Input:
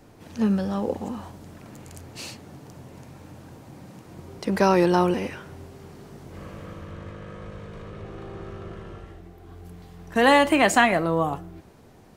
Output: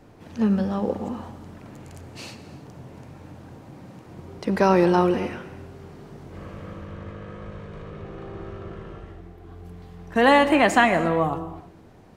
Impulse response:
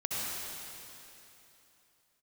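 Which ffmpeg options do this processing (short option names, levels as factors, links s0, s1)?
-filter_complex "[0:a]highshelf=f=5200:g=-9.5,asplit=2[s0][s1];[1:a]atrim=start_sample=2205,afade=t=out:st=0.39:d=0.01,atrim=end_sample=17640[s2];[s1][s2]afir=irnorm=-1:irlink=0,volume=0.158[s3];[s0][s3]amix=inputs=2:normalize=0"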